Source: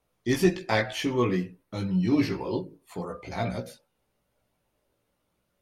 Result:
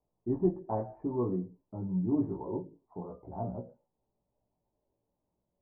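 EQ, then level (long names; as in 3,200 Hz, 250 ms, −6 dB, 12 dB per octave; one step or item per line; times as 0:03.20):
elliptic low-pass filter 950 Hz, stop band 70 dB
notch filter 510 Hz, Q 12
−5.5 dB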